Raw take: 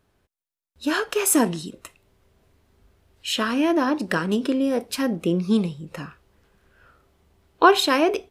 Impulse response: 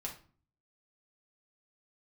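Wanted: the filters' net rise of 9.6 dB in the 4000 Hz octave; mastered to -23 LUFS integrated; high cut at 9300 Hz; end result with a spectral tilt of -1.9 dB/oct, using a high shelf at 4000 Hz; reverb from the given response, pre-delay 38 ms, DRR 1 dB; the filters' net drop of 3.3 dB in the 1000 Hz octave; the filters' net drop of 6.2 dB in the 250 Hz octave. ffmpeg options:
-filter_complex "[0:a]lowpass=9.3k,equalizer=f=250:t=o:g=-8,equalizer=f=1k:t=o:g=-4.5,highshelf=f=4k:g=7,equalizer=f=4k:t=o:g=8,asplit=2[a][b];[1:a]atrim=start_sample=2205,adelay=38[c];[b][c]afir=irnorm=-1:irlink=0,volume=0dB[d];[a][d]amix=inputs=2:normalize=0,volume=-4.5dB"

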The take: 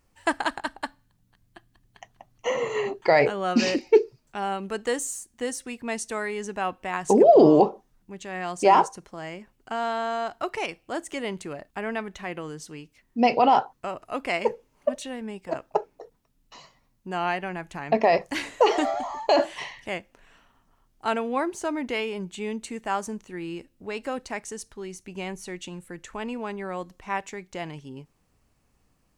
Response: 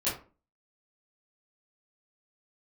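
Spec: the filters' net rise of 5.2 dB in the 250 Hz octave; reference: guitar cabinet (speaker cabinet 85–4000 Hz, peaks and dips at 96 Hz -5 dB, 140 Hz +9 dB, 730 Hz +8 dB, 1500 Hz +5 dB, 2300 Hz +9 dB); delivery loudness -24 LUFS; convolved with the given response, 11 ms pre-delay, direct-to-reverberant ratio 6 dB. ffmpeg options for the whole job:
-filter_complex "[0:a]equalizer=f=250:t=o:g=6,asplit=2[a][b];[1:a]atrim=start_sample=2205,adelay=11[c];[b][c]afir=irnorm=-1:irlink=0,volume=-13.5dB[d];[a][d]amix=inputs=2:normalize=0,highpass=85,equalizer=f=96:t=q:w=4:g=-5,equalizer=f=140:t=q:w=4:g=9,equalizer=f=730:t=q:w=4:g=8,equalizer=f=1.5k:t=q:w=4:g=5,equalizer=f=2.3k:t=q:w=4:g=9,lowpass=f=4k:w=0.5412,lowpass=f=4k:w=1.3066,volume=-4dB"

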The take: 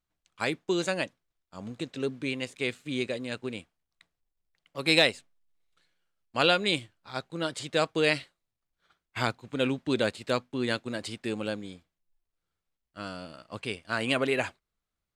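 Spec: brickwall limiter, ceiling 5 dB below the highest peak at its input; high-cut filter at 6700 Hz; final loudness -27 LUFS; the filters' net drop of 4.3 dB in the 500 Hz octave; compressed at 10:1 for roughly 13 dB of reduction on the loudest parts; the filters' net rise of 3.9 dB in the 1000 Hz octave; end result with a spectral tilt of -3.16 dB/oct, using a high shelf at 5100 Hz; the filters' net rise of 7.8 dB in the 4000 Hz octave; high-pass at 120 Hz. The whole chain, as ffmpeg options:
-af "highpass=120,lowpass=6.7k,equalizer=f=500:t=o:g=-7.5,equalizer=f=1k:t=o:g=7,equalizer=f=4k:t=o:g=6,highshelf=f=5.1k:g=8,acompressor=threshold=-25dB:ratio=10,volume=6.5dB,alimiter=limit=-10.5dB:level=0:latency=1"

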